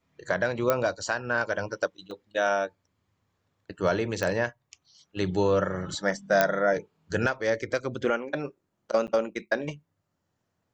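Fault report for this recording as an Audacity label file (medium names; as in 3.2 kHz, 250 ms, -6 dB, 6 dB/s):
0.700000	0.700000	pop -9 dBFS
2.110000	2.110000	dropout 2.2 ms
4.230000	4.230000	pop -15 dBFS
6.410000	6.410000	pop -7 dBFS
9.070000	9.080000	dropout 9.1 ms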